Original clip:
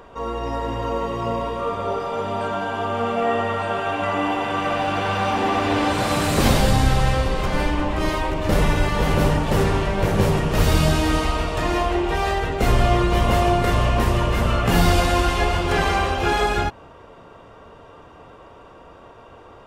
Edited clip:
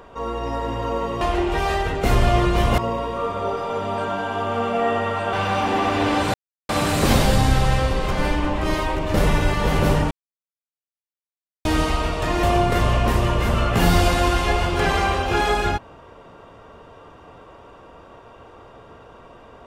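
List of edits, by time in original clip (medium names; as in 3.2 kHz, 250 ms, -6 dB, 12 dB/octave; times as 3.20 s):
3.76–5.03 s: delete
6.04 s: insert silence 0.35 s
9.46–11.00 s: mute
11.78–13.35 s: move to 1.21 s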